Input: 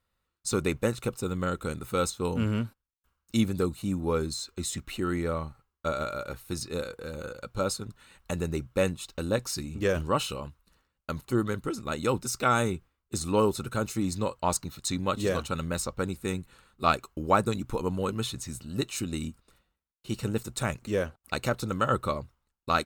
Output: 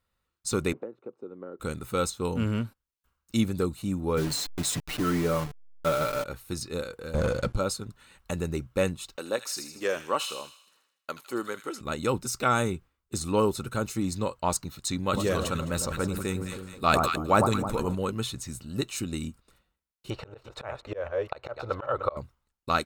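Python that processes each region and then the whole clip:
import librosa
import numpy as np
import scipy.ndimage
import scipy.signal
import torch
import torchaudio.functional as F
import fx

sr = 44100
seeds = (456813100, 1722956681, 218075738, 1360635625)

y = fx.chain(x, sr, fx.ladder_bandpass(hz=440.0, resonance_pct=35),
    fx.band_squash(depth_pct=100), at=(0.73, 1.6))
y = fx.chain(y, sr, fx.delta_hold(step_db=-36.0),
    fx.leveller(passes=1),
    fx.comb(ms=6.8, depth=0.59), at=(4.17, 6.24))
y = fx.chain(y, sr, fx.lowpass(hz=11000.0, slope=24),
    fx.low_shelf(hz=380.0, db=10.0),
    fx.leveller(passes=3), at=(7.14, 7.57))
y = fx.chain(y, sr, fx.highpass(hz=400.0, slope=12),
    fx.echo_wet_highpass(ms=79, feedback_pct=52, hz=2200.0, wet_db=-7.0), at=(9.16, 11.81))
y = fx.chain(y, sr, fx.high_shelf(hz=11000.0, db=4.0),
    fx.echo_alternate(ms=105, hz=1200.0, feedback_pct=69, wet_db=-10.0),
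    fx.sustainer(db_per_s=37.0), at=(15.04, 17.95))
y = fx.chain(y, sr, fx.reverse_delay(ms=196, wet_db=-7.0),
    fx.curve_eq(hz=(110.0, 200.0, 570.0, 900.0, 4400.0, 8700.0), db=(0, -14, 12, 9, -3, -20)),
    fx.auto_swell(attack_ms=327.0), at=(20.1, 22.17))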